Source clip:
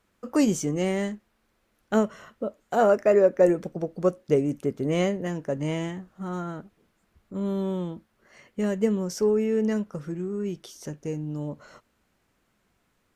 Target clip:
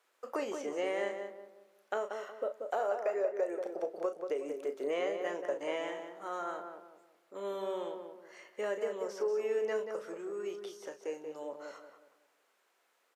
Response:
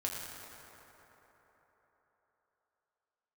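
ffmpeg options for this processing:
-filter_complex "[0:a]alimiter=limit=0.141:level=0:latency=1:release=262,highpass=f=440:w=0.5412,highpass=f=440:w=1.3066,asplit=2[s0][s1];[s1]adelay=35,volume=0.316[s2];[s0][s2]amix=inputs=2:normalize=0,acompressor=threshold=0.0398:ratio=6,asplit=2[s3][s4];[s4]adelay=184,lowpass=f=1200:p=1,volume=0.562,asplit=2[s5][s6];[s6]adelay=184,lowpass=f=1200:p=1,volume=0.39,asplit=2[s7][s8];[s8]adelay=184,lowpass=f=1200:p=1,volume=0.39,asplit=2[s9][s10];[s10]adelay=184,lowpass=f=1200:p=1,volume=0.39,asplit=2[s11][s12];[s12]adelay=184,lowpass=f=1200:p=1,volume=0.39[s13];[s5][s7][s9][s11][s13]amix=inputs=5:normalize=0[s14];[s3][s14]amix=inputs=2:normalize=0,acrossover=split=3200[s15][s16];[s16]acompressor=threshold=0.00178:ratio=4:attack=1:release=60[s17];[s15][s17]amix=inputs=2:normalize=0,volume=0.841"

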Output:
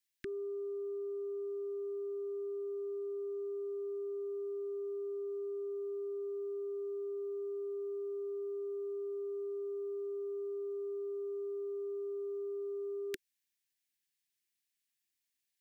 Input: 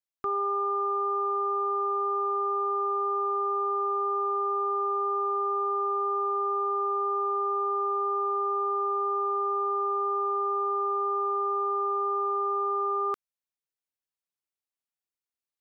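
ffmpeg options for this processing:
-af "asuperstop=centerf=780:order=20:qfactor=0.65,lowshelf=f=500:g=-9,volume=2.37"

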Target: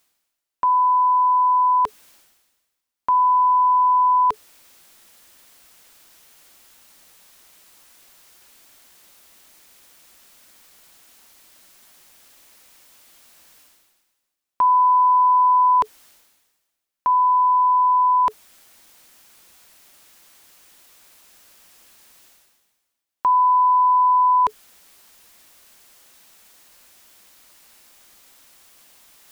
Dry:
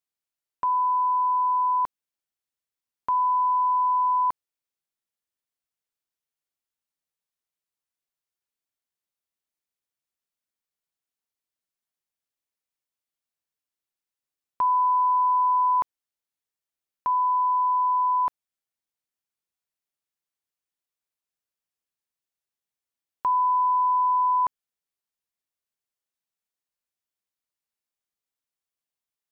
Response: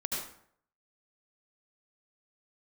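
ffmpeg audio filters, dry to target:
-af "bandreject=f=430:w=12,areverse,acompressor=mode=upward:threshold=0.0251:ratio=2.5,areverse,equalizer=f=120:t=o:w=0.72:g=-8.5,volume=2"

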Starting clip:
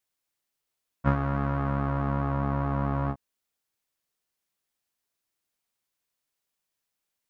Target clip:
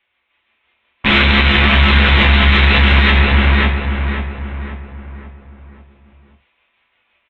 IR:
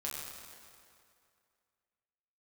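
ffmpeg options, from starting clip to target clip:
-filter_complex "[0:a]equalizer=f=160:t=o:w=0.67:g=-10,equalizer=f=1000:t=o:w=0.67:g=4,equalizer=f=2500:t=o:w=0.67:g=5,tremolo=f=5.9:d=0.51,dynaudnorm=f=220:g=3:m=1.58,aresample=8000,aeval=exprs='(mod(17.8*val(0)+1,2)-1)/17.8':c=same,aresample=44100,equalizer=f=2200:t=o:w=0.65:g=6,acrossover=split=310|1300[s0][s1][s2];[s1]asoftclip=type=tanh:threshold=0.0126[s3];[s0][s3][s2]amix=inputs=3:normalize=0,asplit=2[s4][s5];[s5]adelay=535,lowpass=f=2000:p=1,volume=0.708,asplit=2[s6][s7];[s7]adelay=535,lowpass=f=2000:p=1,volume=0.48,asplit=2[s8][s9];[s9]adelay=535,lowpass=f=2000:p=1,volume=0.48,asplit=2[s10][s11];[s11]adelay=535,lowpass=f=2000:p=1,volume=0.48,asplit=2[s12][s13];[s13]adelay=535,lowpass=f=2000:p=1,volume=0.48,asplit=2[s14][s15];[s15]adelay=535,lowpass=f=2000:p=1,volume=0.48[s16];[s4][s6][s8][s10][s12][s14][s16]amix=inputs=7:normalize=0[s17];[1:a]atrim=start_sample=2205,atrim=end_sample=4410[s18];[s17][s18]afir=irnorm=-1:irlink=0,alimiter=level_in=11.2:limit=0.891:release=50:level=0:latency=1,volume=0.891"

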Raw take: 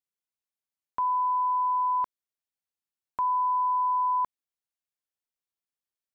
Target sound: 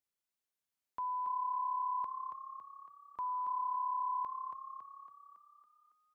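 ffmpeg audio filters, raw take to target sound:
-filter_complex "[0:a]alimiter=level_in=2.99:limit=0.0631:level=0:latency=1,volume=0.335,asplit=2[s0][s1];[s1]asplit=7[s2][s3][s4][s5][s6][s7][s8];[s2]adelay=278,afreqshift=34,volume=0.473[s9];[s3]adelay=556,afreqshift=68,volume=0.254[s10];[s4]adelay=834,afreqshift=102,volume=0.138[s11];[s5]adelay=1112,afreqshift=136,volume=0.0741[s12];[s6]adelay=1390,afreqshift=170,volume=0.0403[s13];[s7]adelay=1668,afreqshift=204,volume=0.0216[s14];[s8]adelay=1946,afreqshift=238,volume=0.0117[s15];[s9][s10][s11][s12][s13][s14][s15]amix=inputs=7:normalize=0[s16];[s0][s16]amix=inputs=2:normalize=0"

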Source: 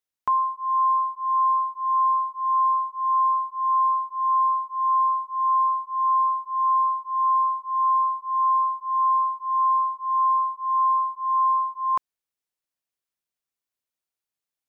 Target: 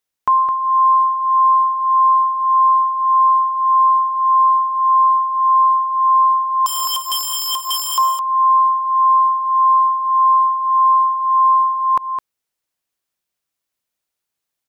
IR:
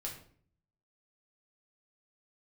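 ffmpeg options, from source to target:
-filter_complex "[0:a]asettb=1/sr,asplit=3[s0][s1][s2];[s0]atrim=end=6.664[s3];[s1]atrim=start=6.66:end=7.98,asetpts=PTS-STARTPTS,afade=t=in:d=0.004:c=qsin,afade=t=out:st=1.316:d=0.004:c=qsin,aeval=exprs='(mod(16.8*val(0)+1,2)-1)/16.8':c=same[s4];[s2]atrim=start=7.976[s5];[s3][s4]acrossfade=d=0.004:c1=hsin:c2=qsin[s6];[s6][s5]acrossfade=d=0.004:c1=qsin:c2=hsin,aecho=1:1:212:0.422,volume=2.37"

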